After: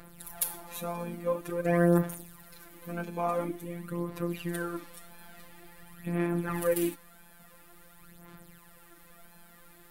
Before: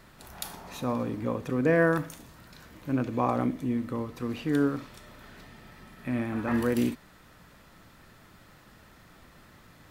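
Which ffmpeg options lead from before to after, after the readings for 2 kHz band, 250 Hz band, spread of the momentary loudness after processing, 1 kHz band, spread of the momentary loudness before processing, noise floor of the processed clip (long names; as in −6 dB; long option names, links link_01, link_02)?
−5.0 dB, −4.0 dB, 23 LU, −2.5 dB, 16 LU, −56 dBFS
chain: -af "afftfilt=real='hypot(re,im)*cos(PI*b)':imag='0':win_size=1024:overlap=0.75,highshelf=frequency=7900:width_type=q:width=1.5:gain=9.5,aphaser=in_gain=1:out_gain=1:delay=4.6:decay=0.6:speed=0.48:type=sinusoidal"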